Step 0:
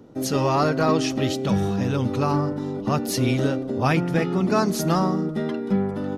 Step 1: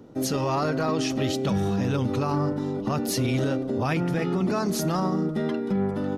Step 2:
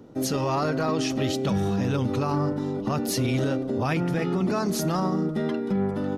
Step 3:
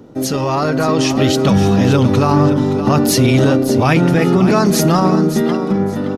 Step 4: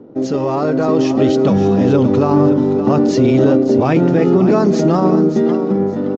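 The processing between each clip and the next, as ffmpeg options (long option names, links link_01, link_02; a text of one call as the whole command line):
ffmpeg -i in.wav -af "alimiter=limit=-17dB:level=0:latency=1:release=30" out.wav
ffmpeg -i in.wav -af anull out.wav
ffmpeg -i in.wav -af "dynaudnorm=framelen=270:gausssize=7:maxgain=5dB,aecho=1:1:571|1142|1713:0.282|0.0648|0.0149,volume=7.5dB" out.wav
ffmpeg -i in.wav -af "equalizer=frequency=380:width_type=o:width=2.8:gain=13.5,adynamicsmooth=sensitivity=5.5:basefreq=3100,aresample=16000,aresample=44100,volume=-10.5dB" out.wav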